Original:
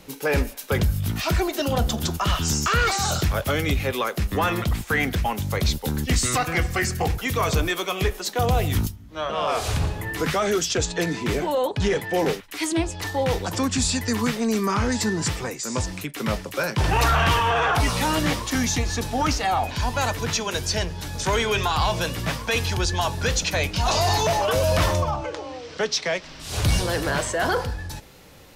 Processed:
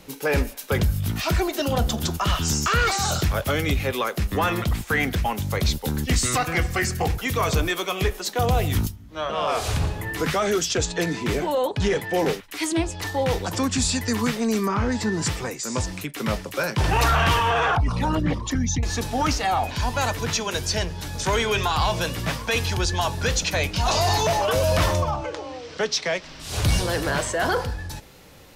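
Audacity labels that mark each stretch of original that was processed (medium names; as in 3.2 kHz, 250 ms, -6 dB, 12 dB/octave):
14.670000	15.120000	low-pass 1.7 kHz -> 3.5 kHz 6 dB/octave
17.750000	18.830000	resonances exaggerated exponent 2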